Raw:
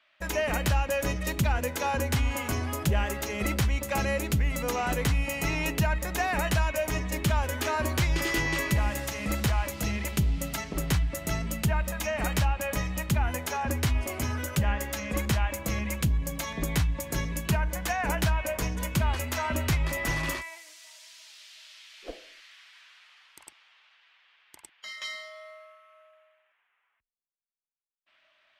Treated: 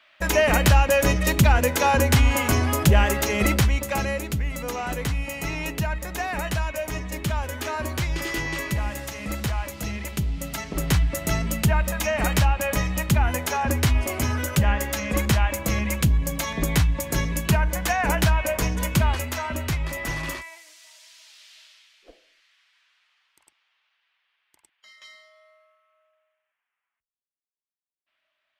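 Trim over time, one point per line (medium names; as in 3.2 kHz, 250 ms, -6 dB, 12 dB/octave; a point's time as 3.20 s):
3.37 s +9 dB
4.29 s -0.5 dB
10.32 s -0.5 dB
11.02 s +6 dB
19.00 s +6 dB
19.49 s 0 dB
21.59 s 0 dB
22.07 s -10.5 dB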